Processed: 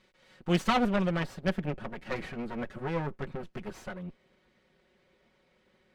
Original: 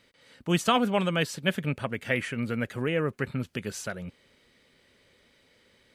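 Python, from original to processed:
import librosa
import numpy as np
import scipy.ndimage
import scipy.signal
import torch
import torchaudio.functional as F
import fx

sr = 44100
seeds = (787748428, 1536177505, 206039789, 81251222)

y = fx.lower_of_two(x, sr, delay_ms=5.4)
y = fx.lowpass(y, sr, hz=fx.steps((0.0, 3000.0), (0.96, 1300.0)), slope=6)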